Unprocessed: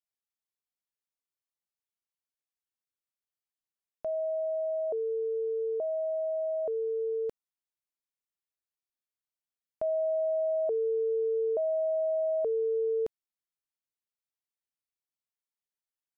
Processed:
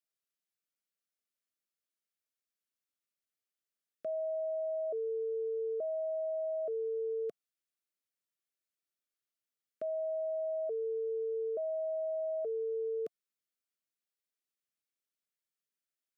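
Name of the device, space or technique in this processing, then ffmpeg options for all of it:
PA system with an anti-feedback notch: -af "highpass=f=160:w=0.5412,highpass=f=160:w=1.3066,asuperstop=centerf=890:order=12:qfactor=2,alimiter=level_in=8dB:limit=-24dB:level=0:latency=1,volume=-8dB"

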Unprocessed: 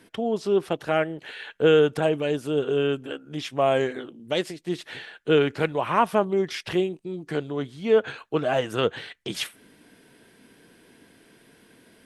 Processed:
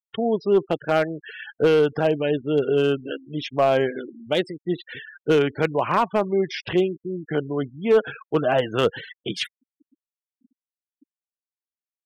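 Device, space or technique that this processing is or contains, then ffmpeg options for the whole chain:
limiter into clipper: -af "afftfilt=real='re*gte(hypot(re,im),0.0224)':imag='im*gte(hypot(re,im),0.0224)':win_size=1024:overlap=0.75,highshelf=f=6.4k:g=-4.5,alimiter=limit=-11dB:level=0:latency=1:release=426,asoftclip=type=hard:threshold=-14.5dB,volume=3.5dB"

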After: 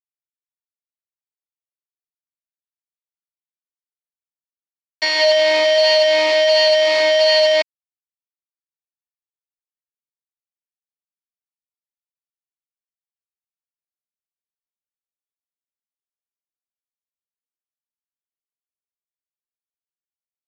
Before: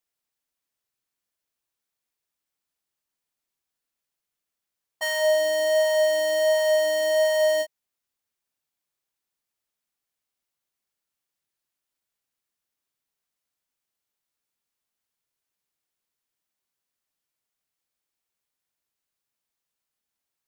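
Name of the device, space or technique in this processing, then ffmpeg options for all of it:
hand-held game console: -af "acrusher=bits=3:mix=0:aa=0.000001,highpass=420,equalizer=f=1.4k:t=q:w=4:g=-8,equalizer=f=2.3k:t=q:w=4:g=8,equalizer=f=4.6k:t=q:w=4:g=9,lowpass=f=4.7k:w=0.5412,lowpass=f=4.7k:w=1.3066,volume=6dB"

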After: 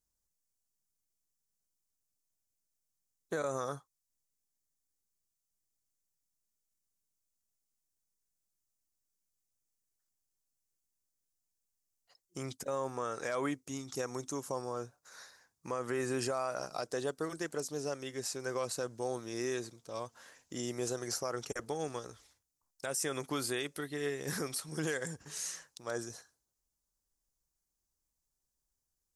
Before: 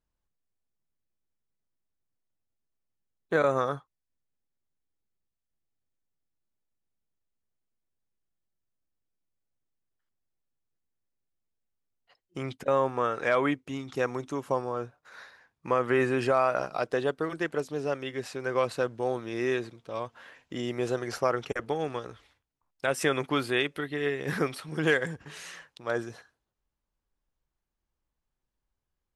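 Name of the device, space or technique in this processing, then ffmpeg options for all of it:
over-bright horn tweeter: -af "highshelf=f=4.3k:t=q:w=1.5:g=13.5,alimiter=limit=-18.5dB:level=0:latency=1:release=80,volume=-6dB"

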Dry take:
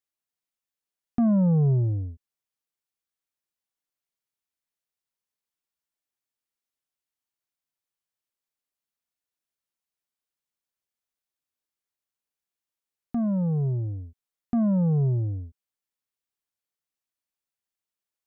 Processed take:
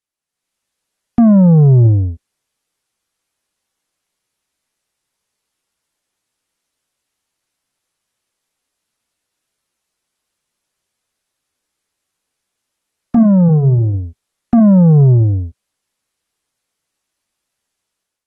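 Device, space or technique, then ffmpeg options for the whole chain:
low-bitrate web radio: -filter_complex "[0:a]asettb=1/sr,asplit=3[a][b][c];[a]atrim=end=13.494[d];[b]atrim=start=13.49:end=13.93,asetpts=PTS-STARTPTS,afade=t=in:d=0.004:c=qsin,afade=t=out:st=0.436:d=0.004:c=qsin,bandreject=f=73.05:t=h:w=4,bandreject=f=146.1:t=h:w=4,bandreject=f=219.15:t=h:w=4,bandreject=f=292.2:t=h:w=4,bandreject=f=365.25:t=h:w=4,bandreject=f=438.3:t=h:w=4,bandreject=f=511.35:t=h:w=4,bandreject=f=584.4:t=h:w=4[e];[c]atrim=start=13.926[f];[d][e]acrossfade=d=0.004:c1=hsin:c2=qsin[g];[g][f]acrossfade=d=0.004:c1=qsin:c2=hsin,dynaudnorm=f=170:g=5:m=11dB,alimiter=limit=-10dB:level=0:latency=1,volume=4.5dB" -ar 32000 -c:a aac -b:a 32k

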